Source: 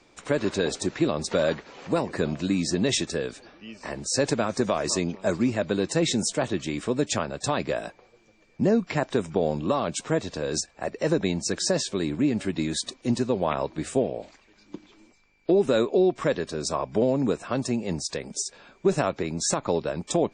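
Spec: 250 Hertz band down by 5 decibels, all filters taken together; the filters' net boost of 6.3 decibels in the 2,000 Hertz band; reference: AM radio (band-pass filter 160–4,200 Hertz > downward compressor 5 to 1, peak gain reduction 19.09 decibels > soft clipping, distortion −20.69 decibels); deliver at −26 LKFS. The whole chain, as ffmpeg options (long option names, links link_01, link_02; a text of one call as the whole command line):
ffmpeg -i in.wav -af "highpass=160,lowpass=4200,equalizer=frequency=250:width_type=o:gain=-6,equalizer=frequency=2000:width_type=o:gain=8.5,acompressor=threshold=-40dB:ratio=5,asoftclip=threshold=-30dB,volume=17.5dB" out.wav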